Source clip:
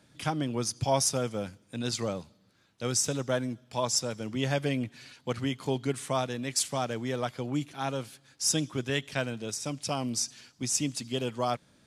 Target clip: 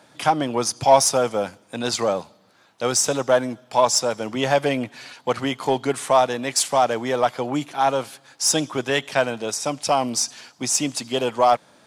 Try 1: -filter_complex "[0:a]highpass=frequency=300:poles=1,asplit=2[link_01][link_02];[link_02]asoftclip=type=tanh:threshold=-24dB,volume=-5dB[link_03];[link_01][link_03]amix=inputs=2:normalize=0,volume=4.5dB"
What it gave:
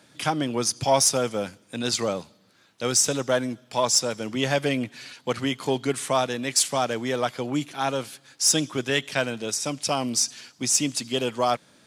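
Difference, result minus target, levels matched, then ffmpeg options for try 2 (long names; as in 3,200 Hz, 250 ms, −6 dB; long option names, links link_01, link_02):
1,000 Hz band −4.5 dB
-filter_complex "[0:a]highpass=frequency=300:poles=1,equalizer=frequency=810:width=0.94:gain=9.5,asplit=2[link_01][link_02];[link_02]asoftclip=type=tanh:threshold=-24dB,volume=-5dB[link_03];[link_01][link_03]amix=inputs=2:normalize=0,volume=4.5dB"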